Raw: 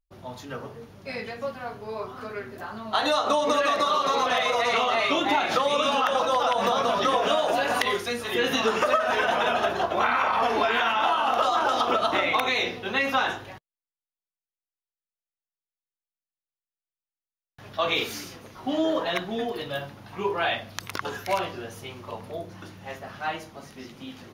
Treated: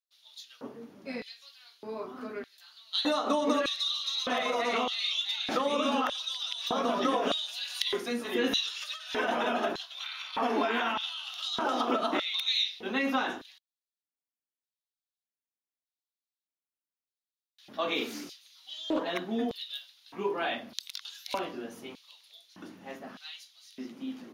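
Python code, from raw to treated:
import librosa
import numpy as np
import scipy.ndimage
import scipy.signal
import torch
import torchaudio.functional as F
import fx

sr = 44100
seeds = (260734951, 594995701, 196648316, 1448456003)

y = fx.filter_lfo_highpass(x, sr, shape='square', hz=0.82, low_hz=250.0, high_hz=3800.0, q=3.5)
y = fx.doppler_dist(y, sr, depth_ms=0.15, at=(18.05, 19.09))
y = y * librosa.db_to_amplitude(-7.0)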